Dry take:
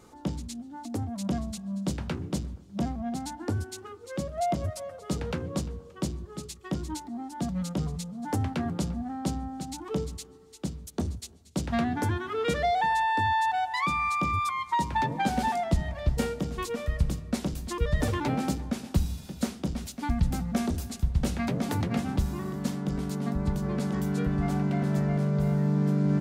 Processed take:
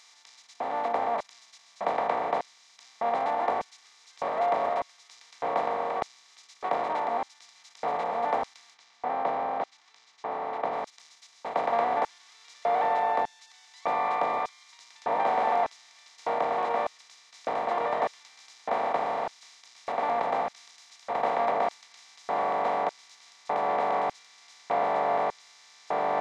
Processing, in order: per-bin compression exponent 0.2; LFO high-pass square 0.83 Hz 600–5700 Hz; tape spacing loss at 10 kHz 27 dB, from 8.73 s at 10 kHz 40 dB, from 10.72 s at 10 kHz 27 dB; gain -7 dB

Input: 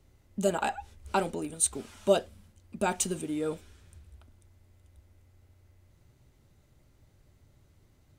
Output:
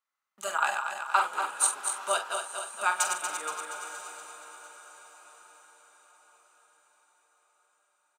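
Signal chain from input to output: regenerating reverse delay 0.118 s, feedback 77%, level -6 dB; gate -52 dBFS, range -19 dB; resonant high-pass 1200 Hz, resonance Q 3.9; doubler 45 ms -9 dB; on a send: diffused feedback echo 0.939 s, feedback 42%, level -14 dB

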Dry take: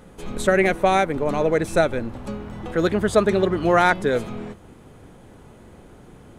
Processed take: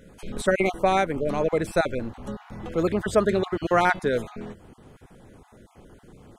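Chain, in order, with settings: random spectral dropouts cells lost 21%; gain -3 dB

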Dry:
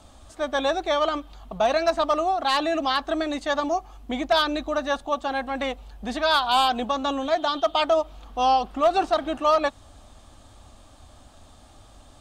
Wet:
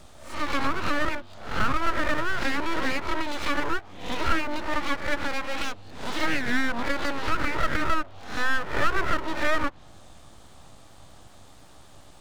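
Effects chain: spectral swells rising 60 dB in 0.50 s; treble ducked by the level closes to 1100 Hz, closed at -16.5 dBFS; full-wave rectifier

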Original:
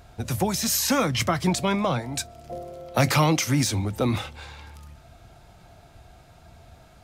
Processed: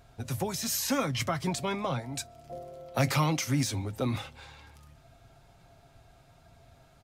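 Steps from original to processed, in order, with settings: comb 7.4 ms, depth 36%; gain -7.5 dB

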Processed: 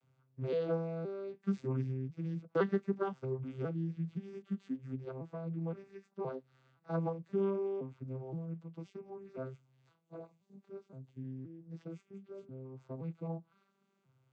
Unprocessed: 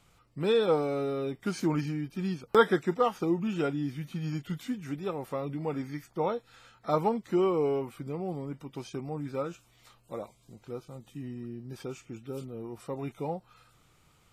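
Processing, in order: arpeggiated vocoder major triad, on C3, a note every 0.52 s; gain -6.5 dB

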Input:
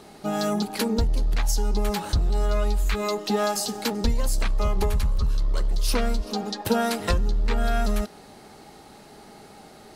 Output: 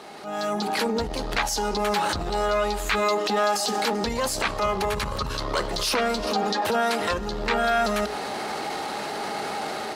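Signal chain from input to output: HPF 48 Hz 24 dB/oct; low shelf 140 Hz -8.5 dB; notches 60/120/180/240/300/360/420 Hz; compressor 10:1, threshold -37 dBFS, peak gain reduction 18.5 dB; transient shaper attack -9 dB, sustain +4 dB; AGC gain up to 12 dB; overdrive pedal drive 10 dB, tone 2800 Hz, clips at -8.5 dBFS; gain +4 dB

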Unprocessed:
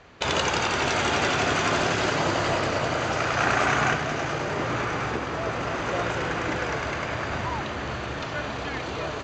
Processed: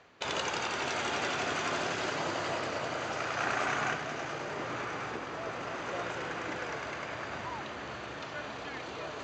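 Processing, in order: HPF 220 Hz 6 dB/oct; reverse; upward compressor, threshold -30 dBFS; reverse; gain -8.5 dB

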